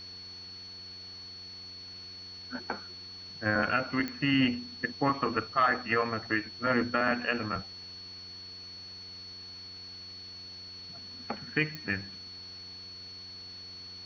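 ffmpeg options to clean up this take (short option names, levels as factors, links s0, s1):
-af "adeclick=t=4,bandreject=f=91.2:t=h:w=4,bandreject=f=182.4:t=h:w=4,bandreject=f=273.6:t=h:w=4,bandreject=f=364.8:t=h:w=4,bandreject=f=456:t=h:w=4,bandreject=f=4400:w=30,afftdn=nr=30:nf=-46"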